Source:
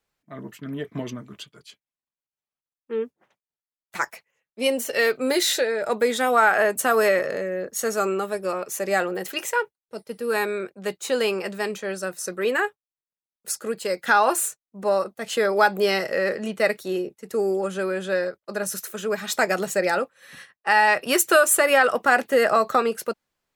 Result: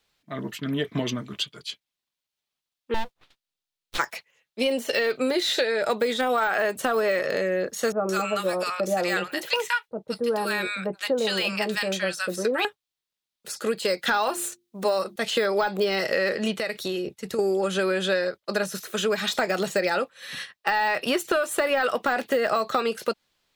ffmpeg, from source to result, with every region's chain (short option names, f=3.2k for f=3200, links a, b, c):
-filter_complex "[0:a]asettb=1/sr,asplit=3[a][b][c];[a]atrim=end=2.944[d];[b]atrim=start=2.94:end=3.98,asetpts=PTS-STARTPTS,afade=t=in:d=0.004:c=qsin,afade=t=out:st=1.036:d=0.004:c=qsin,highpass=180,aeval=exprs='abs(val(0))':c=same,acrusher=bits=9:mode=log:mix=0:aa=0.000001[e];[c]atrim=start=3.976[f];[d][e]acrossfade=d=0.004:c1=hsin:c2=qsin[g];[g][f]acrossfade=d=0.004:c1=qsin:c2=hsin,asettb=1/sr,asplit=3[h][i][j];[h]atrim=end=7.924[k];[i]atrim=start=7.92:end=12.65,asetpts=PTS-STARTPTS,afade=t=in:d=0.004:c=qsin,afade=t=out:st=4.726:d=0.004:c=qsin,bandreject=f=400:w=5.8,acrossover=split=1000[l][m];[m]adelay=170[n];[l][n]amix=inputs=2:normalize=0,atrim=end_sample=208593[o];[j]atrim=start=12.646[p];[k][o]acrossfade=d=0.004:c1=hsin:c2=qsin[q];[q][p]acrossfade=d=0.004:c1=qsin:c2=hsin,asettb=1/sr,asplit=3[r][s][t];[r]atrim=end=14.094[u];[s]atrim=start=14.09:end=15.16,asetpts=PTS-STARTPTS,afade=t=in:d=0.004:c=qsin,afade=t=out:st=1.066:d=0.004:c=qsin,highshelf=f=5k:g=7,bandreject=f=50:t=h:w=6,bandreject=f=100:t=h:w=6,bandreject=f=150:t=h:w=6,bandreject=f=200:t=h:w=6,bandreject=f=250:t=h:w=6,bandreject=f=300:t=h:w=6,bandreject=f=350:t=h:w=6[v];[t]atrim=start=15.156[w];[u][v]acrossfade=d=0.004:c1=hsin:c2=qsin[x];[x][w]acrossfade=d=0.004:c1=qsin:c2=hsin,asettb=1/sr,asplit=3[y][z][aa];[y]atrim=end=16.564[ab];[z]atrim=start=16.56:end=17.39,asetpts=PTS-STARTPTS,afade=t=in:d=0.004:c=qsin,afade=t=out:st=0.826:d=0.004:c=qsin,asubboost=boost=8:cutoff=190,acompressor=threshold=-29dB:ratio=12:attack=3.2:release=140:knee=1:detection=peak[ac];[aa]atrim=start=17.386[ad];[ab][ac]acrossfade=d=0.004:c1=hsin:c2=qsin[ae];[ae][ad]acrossfade=d=0.004:c1=qsin:c2=hsin,deesser=0.8,equalizer=f=3.7k:t=o:w=1.2:g=9.5,acompressor=threshold=-25dB:ratio=6,volume=4.5dB"